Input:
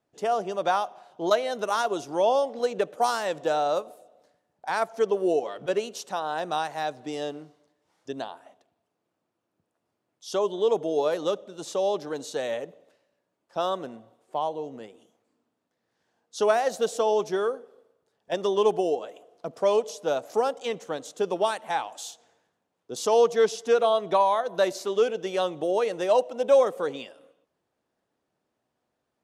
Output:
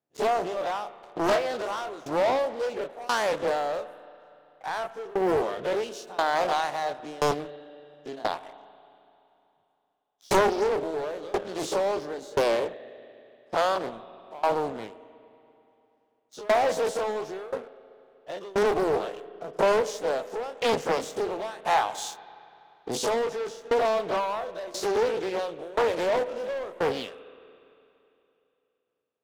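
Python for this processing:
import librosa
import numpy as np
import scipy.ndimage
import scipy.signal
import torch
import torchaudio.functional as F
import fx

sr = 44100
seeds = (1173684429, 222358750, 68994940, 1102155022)

y = fx.spec_dilate(x, sr, span_ms=60)
y = scipy.signal.sosfilt(scipy.signal.butter(2, 95.0, 'highpass', fs=sr, output='sos'), y)
y = fx.high_shelf(y, sr, hz=5700.0, db=-4.0)
y = fx.leveller(y, sr, passes=3)
y = fx.rider(y, sr, range_db=10, speed_s=0.5)
y = fx.tremolo_shape(y, sr, shape='saw_down', hz=0.97, depth_pct=95)
y = fx.rev_spring(y, sr, rt60_s=2.9, pass_ms=(34, 48), chirp_ms=25, drr_db=15.0)
y = fx.doppler_dist(y, sr, depth_ms=0.69)
y = y * 10.0 ** (-8.0 / 20.0)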